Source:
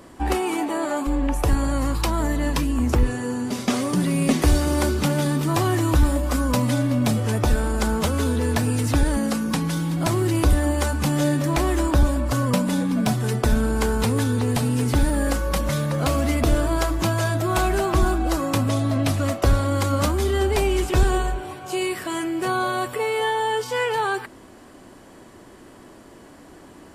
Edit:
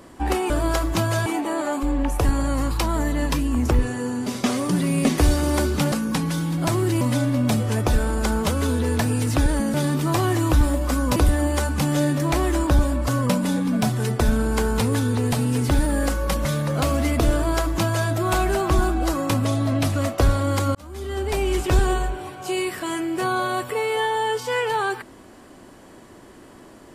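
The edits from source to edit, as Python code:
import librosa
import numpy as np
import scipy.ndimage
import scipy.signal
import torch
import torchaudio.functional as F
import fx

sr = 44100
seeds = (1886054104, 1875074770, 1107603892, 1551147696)

y = fx.edit(x, sr, fx.swap(start_s=5.16, length_s=1.42, other_s=9.31, other_length_s=1.09),
    fx.duplicate(start_s=16.57, length_s=0.76, to_s=0.5),
    fx.fade_in_span(start_s=19.99, length_s=0.84), tone=tone)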